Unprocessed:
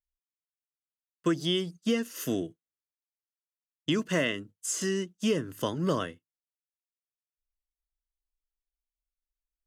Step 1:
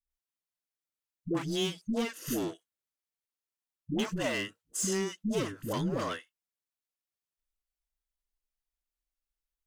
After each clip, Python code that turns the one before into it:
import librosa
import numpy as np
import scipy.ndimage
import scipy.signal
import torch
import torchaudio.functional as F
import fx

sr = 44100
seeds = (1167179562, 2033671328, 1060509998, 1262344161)

y = np.clip(x, -10.0 ** (-27.0 / 20.0), 10.0 ** (-27.0 / 20.0))
y = fx.dispersion(y, sr, late='highs', ms=108.0, hz=450.0)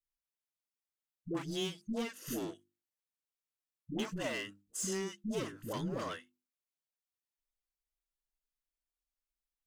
y = fx.hum_notches(x, sr, base_hz=50, count=7)
y = F.gain(torch.from_numpy(y), -5.5).numpy()